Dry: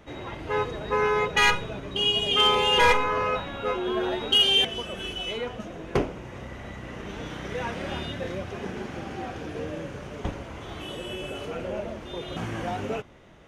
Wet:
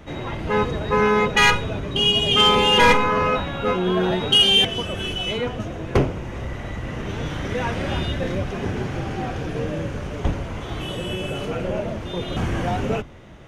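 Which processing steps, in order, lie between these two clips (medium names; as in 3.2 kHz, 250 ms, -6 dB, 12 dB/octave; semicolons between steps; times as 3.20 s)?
octave divider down 1 oct, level +2 dB; in parallel at -6 dB: saturation -21 dBFS, distortion -11 dB; on the sum: trim +2.5 dB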